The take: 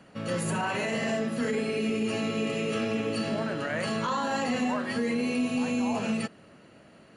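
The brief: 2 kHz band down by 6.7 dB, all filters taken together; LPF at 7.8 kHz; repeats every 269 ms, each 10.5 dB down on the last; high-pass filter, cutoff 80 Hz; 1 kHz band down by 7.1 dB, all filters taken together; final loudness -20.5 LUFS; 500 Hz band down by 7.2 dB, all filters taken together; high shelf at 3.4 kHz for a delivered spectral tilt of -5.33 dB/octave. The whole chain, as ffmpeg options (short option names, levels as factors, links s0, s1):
-af "highpass=80,lowpass=7800,equalizer=f=500:t=o:g=-7,equalizer=f=1000:t=o:g=-5,equalizer=f=2000:t=o:g=-4.5,highshelf=f=3400:g=-7,aecho=1:1:269|538|807:0.299|0.0896|0.0269,volume=3.98"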